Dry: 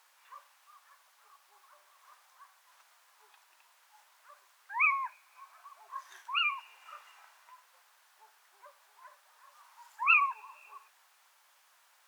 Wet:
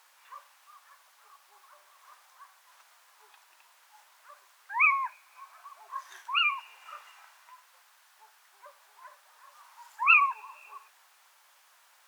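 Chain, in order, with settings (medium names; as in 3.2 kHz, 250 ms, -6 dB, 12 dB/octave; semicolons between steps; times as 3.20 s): 7.10–8.66 s: high-pass 590 Hz 6 dB/octave; trim +4 dB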